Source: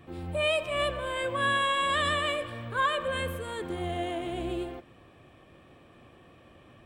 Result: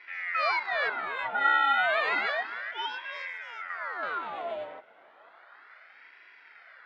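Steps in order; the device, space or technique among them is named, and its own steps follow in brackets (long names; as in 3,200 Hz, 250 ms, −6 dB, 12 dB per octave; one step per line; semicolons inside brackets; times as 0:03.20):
0:02.71–0:04.03: octave-band graphic EQ 125/500/2,000/4,000 Hz −9/−8/−10/−5 dB
voice changer toy (ring modulator whose carrier an LFO sweeps 1,200 Hz, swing 80%, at 0.32 Hz; loudspeaker in its box 490–4,500 Hz, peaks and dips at 670 Hz +7 dB, 1,400 Hz +8 dB, 2,000 Hz +6 dB, 2,800 Hz −3 dB, 4,100 Hz −4 dB)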